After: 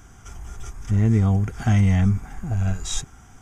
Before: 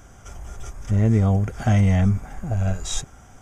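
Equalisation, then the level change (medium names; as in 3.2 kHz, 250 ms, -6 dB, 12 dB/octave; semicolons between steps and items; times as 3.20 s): peaking EQ 570 Hz -12.5 dB 0.41 oct; 0.0 dB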